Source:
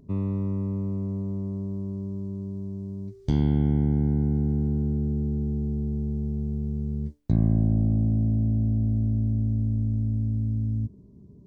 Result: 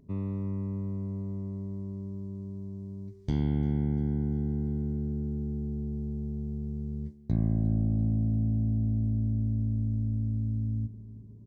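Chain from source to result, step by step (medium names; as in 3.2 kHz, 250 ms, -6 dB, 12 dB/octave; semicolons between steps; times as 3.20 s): peaking EQ 2 kHz +4 dB 0.51 oct; feedback delay 347 ms, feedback 54%, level -19 dB; trim -5.5 dB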